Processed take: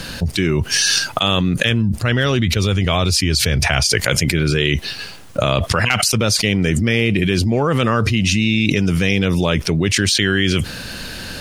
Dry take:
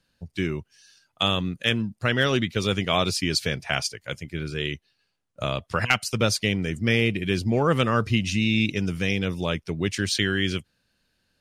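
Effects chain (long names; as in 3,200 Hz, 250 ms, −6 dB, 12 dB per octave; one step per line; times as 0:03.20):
0:01.64–0:03.89: parametric band 71 Hz +14.5 dB 1.2 octaves
envelope flattener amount 100%
level +1.5 dB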